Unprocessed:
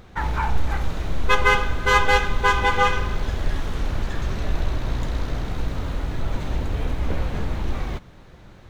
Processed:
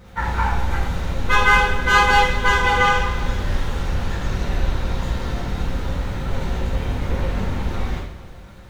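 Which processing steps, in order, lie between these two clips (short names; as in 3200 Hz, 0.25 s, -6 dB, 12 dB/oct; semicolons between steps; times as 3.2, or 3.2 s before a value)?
crackle 430/s -50 dBFS; two-slope reverb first 0.63 s, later 2.7 s, DRR -8.5 dB; gain -5.5 dB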